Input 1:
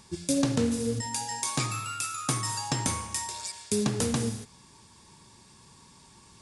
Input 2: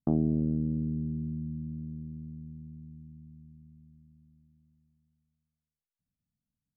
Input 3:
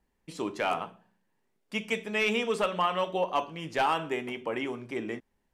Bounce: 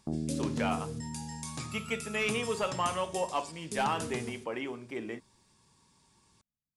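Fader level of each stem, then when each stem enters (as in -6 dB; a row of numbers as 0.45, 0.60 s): -11.5, -8.0, -4.0 dB; 0.00, 0.00, 0.00 s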